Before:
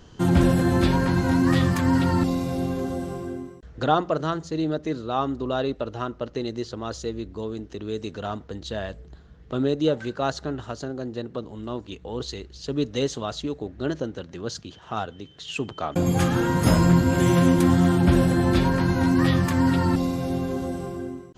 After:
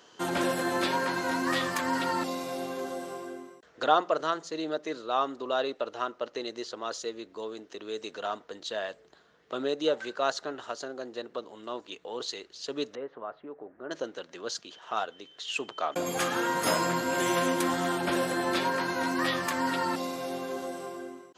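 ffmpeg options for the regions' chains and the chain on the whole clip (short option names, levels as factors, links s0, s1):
-filter_complex "[0:a]asettb=1/sr,asplit=3[s0][s1][s2];[s0]atrim=end=12.954[s3];[s1]atrim=start=12.95:end=13.91,asetpts=PTS-STARTPTS,afade=t=in:d=0.004:c=qsin,afade=t=out:st=0.956:d=0.004:c=qsin,acompressor=threshold=0.0112:ratio=1.5:attack=3.2:release=140:knee=1:detection=peak,lowpass=f=1700:w=0.5412,lowpass=f=1700:w=1.3066[s4];[s2]atrim=start=13.906[s5];[s3][s4]acrossfade=d=0.004:c1=hsin:c2=qsin[s6];[s6][s5]acrossfade=d=0.004:c1=qsin:c2=hsin,highpass=520,bandreject=f=810:w=20"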